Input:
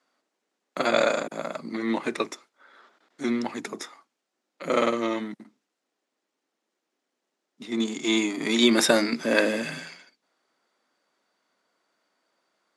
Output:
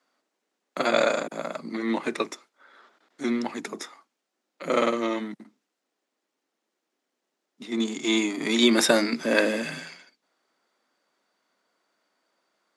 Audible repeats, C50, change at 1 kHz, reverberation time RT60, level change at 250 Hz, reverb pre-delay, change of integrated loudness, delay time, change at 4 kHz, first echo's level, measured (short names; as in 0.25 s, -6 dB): none, none, 0.0 dB, none, 0.0 dB, none, 0.0 dB, none, 0.0 dB, none